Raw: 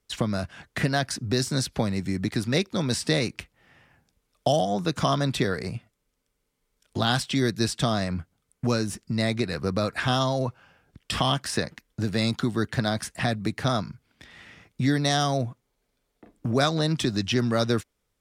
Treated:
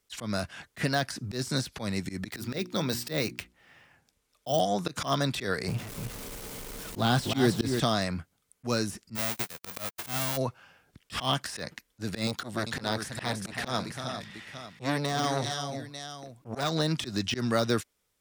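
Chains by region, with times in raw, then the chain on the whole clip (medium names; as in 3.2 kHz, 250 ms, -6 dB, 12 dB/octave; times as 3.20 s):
2.30–4.60 s: hum notches 60/120/180/240/300/360 Hz + decimation joined by straight lines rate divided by 2×
5.68–7.80 s: jump at every zero crossing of -34 dBFS + tilt shelf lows +4.5 dB, about 900 Hz + delay 299 ms -6.5 dB
9.15–10.36 s: formants flattened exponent 0.1 + gate -29 dBFS, range -59 dB
12.27–16.72 s: multi-tap echo 324/395/893 ms -12.5/-11/-17.5 dB + transformer saturation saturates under 950 Hz
whole clip: tilt EQ +1.5 dB/octave; de-esser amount 65%; slow attack 101 ms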